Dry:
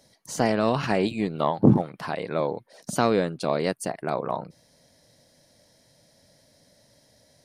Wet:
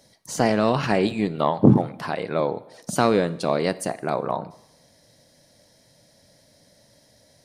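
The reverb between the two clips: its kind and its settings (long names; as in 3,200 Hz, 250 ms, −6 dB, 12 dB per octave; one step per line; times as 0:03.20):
dense smooth reverb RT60 0.85 s, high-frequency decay 0.95×, DRR 15.5 dB
level +2.5 dB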